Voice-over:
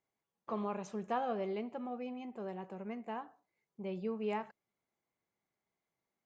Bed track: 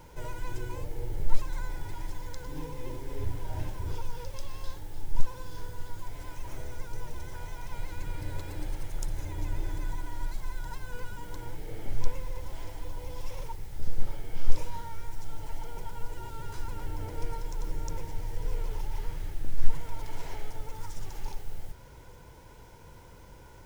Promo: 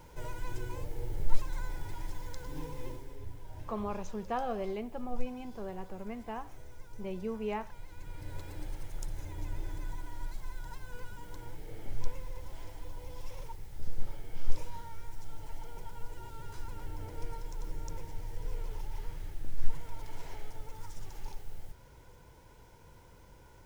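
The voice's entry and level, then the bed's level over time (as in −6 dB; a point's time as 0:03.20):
3.20 s, +1.0 dB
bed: 0:02.85 −2.5 dB
0:03.19 −11.5 dB
0:07.88 −11.5 dB
0:08.39 −5.5 dB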